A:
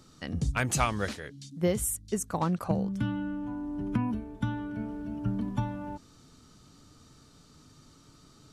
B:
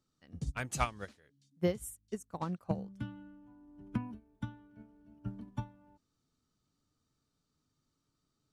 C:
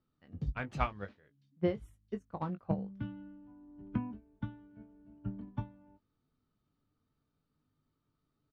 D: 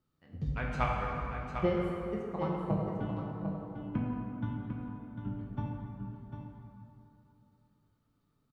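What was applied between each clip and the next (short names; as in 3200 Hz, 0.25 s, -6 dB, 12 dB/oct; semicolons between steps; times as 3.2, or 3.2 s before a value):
upward expander 2.5:1, over -37 dBFS; gain -2.5 dB
air absorption 320 m; doubler 20 ms -9.5 dB; gain +1 dB
echo 0.749 s -8 dB; plate-style reverb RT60 3 s, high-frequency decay 0.55×, DRR -2 dB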